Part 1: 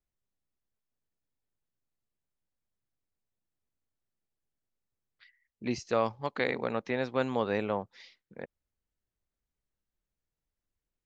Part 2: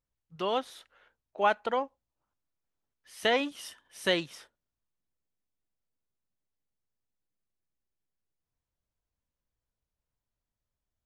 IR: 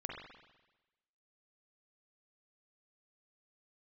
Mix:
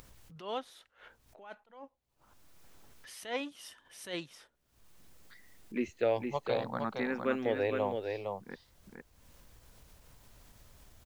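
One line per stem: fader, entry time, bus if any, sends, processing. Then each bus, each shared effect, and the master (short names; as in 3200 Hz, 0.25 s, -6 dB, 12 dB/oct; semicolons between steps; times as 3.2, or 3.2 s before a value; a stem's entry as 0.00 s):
+0.5 dB, 0.10 s, no send, echo send -5 dB, tone controls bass -1 dB, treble -7 dB; endless phaser +0.68 Hz
-7.0 dB, 0.00 s, no send, no echo send, upward compressor, threshold -35 dBFS; attack slew limiter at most 150 dB/s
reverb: off
echo: echo 0.461 s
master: upward compressor, threshold -47 dBFS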